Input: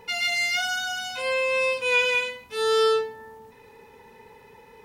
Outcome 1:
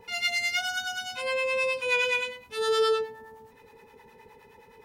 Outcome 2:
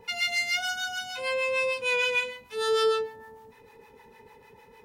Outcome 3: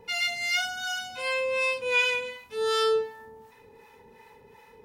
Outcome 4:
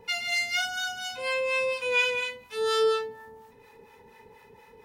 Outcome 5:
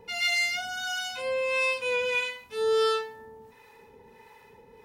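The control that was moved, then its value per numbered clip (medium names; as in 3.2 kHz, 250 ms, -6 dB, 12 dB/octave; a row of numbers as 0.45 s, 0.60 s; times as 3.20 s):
harmonic tremolo, rate: 9.6 Hz, 6.6 Hz, 2.7 Hz, 4.2 Hz, 1.5 Hz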